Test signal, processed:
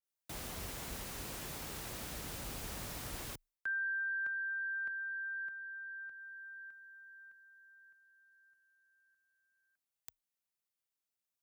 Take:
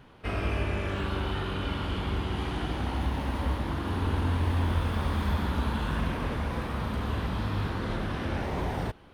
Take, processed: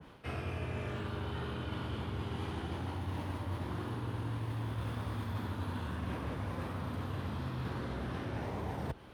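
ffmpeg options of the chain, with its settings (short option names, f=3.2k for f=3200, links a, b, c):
-af "highshelf=f=6.9k:g=5,areverse,acompressor=threshold=-35dB:ratio=6,areverse,afreqshift=26,adynamicequalizer=threshold=0.00447:dfrequency=1500:dqfactor=0.7:tfrequency=1500:tqfactor=0.7:attack=5:release=100:ratio=0.375:range=2:mode=cutabove:tftype=highshelf"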